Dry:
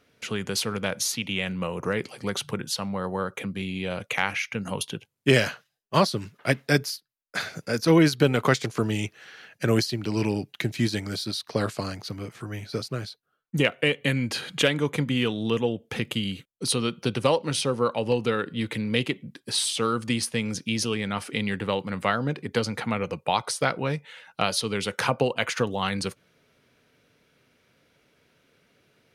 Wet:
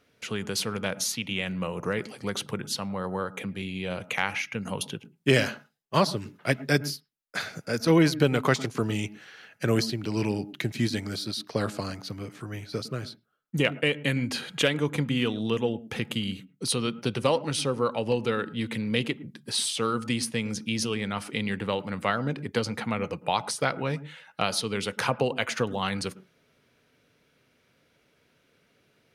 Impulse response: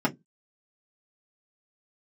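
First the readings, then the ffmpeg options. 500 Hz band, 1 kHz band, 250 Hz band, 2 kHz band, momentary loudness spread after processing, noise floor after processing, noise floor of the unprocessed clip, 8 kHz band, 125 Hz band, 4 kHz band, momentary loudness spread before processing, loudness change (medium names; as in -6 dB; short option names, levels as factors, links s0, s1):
-2.0 dB, -2.0 dB, -1.5 dB, -2.0 dB, 10 LU, -67 dBFS, -72 dBFS, -2.0 dB, -2.0 dB, -2.0 dB, 10 LU, -2.0 dB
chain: -filter_complex "[0:a]asplit=2[s0][s1];[1:a]atrim=start_sample=2205,lowpass=2800,adelay=105[s2];[s1][s2]afir=irnorm=-1:irlink=0,volume=0.0251[s3];[s0][s3]amix=inputs=2:normalize=0,volume=0.794"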